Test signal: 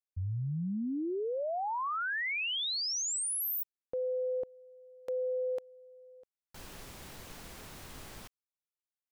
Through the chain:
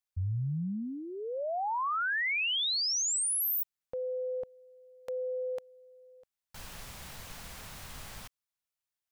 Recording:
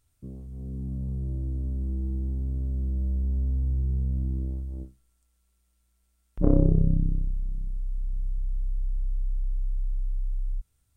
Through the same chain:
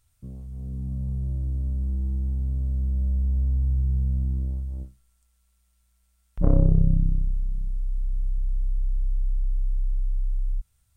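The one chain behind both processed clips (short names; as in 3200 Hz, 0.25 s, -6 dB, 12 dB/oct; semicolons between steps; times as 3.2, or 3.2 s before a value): bell 340 Hz -10.5 dB 1.1 oct; gain +3.5 dB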